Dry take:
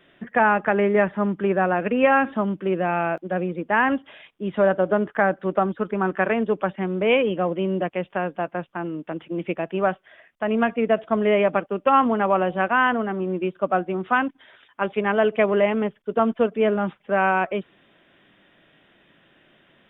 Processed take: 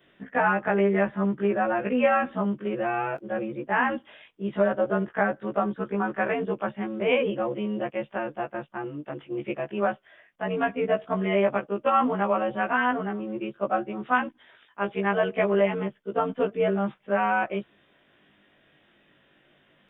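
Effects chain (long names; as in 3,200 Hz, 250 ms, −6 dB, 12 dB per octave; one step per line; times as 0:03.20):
every overlapping window played backwards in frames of 40 ms
level −1 dB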